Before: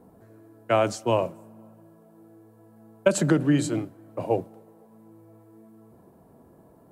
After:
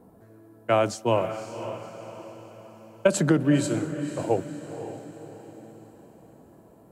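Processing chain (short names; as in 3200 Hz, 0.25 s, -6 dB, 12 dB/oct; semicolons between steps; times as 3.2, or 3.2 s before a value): tempo 1×; diffused feedback echo 0.534 s, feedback 46%, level -10.5 dB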